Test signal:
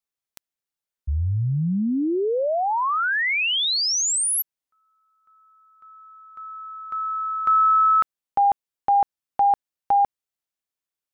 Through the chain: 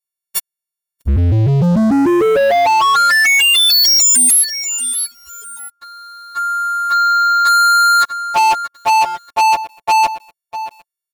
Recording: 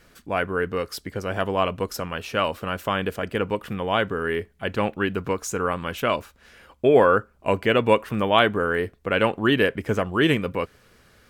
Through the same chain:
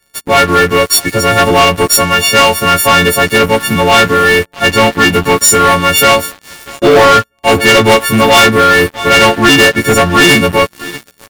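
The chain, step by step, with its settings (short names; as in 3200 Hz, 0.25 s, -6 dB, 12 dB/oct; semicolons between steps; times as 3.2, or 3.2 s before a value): frequency quantiser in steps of 4 st; feedback echo 0.638 s, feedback 37%, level -23.5 dB; sample leveller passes 5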